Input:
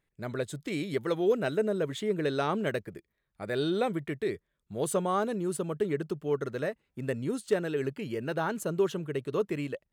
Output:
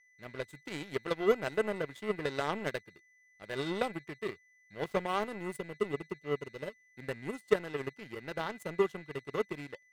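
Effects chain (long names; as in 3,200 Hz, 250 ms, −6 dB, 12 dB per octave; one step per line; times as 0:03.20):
0:04.12–0:05.17: running median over 5 samples
0:05.48–0:06.98: time-frequency box erased 630–2,500 Hz
steady tone 2,000 Hz −40 dBFS
power curve on the samples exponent 2
level +2.5 dB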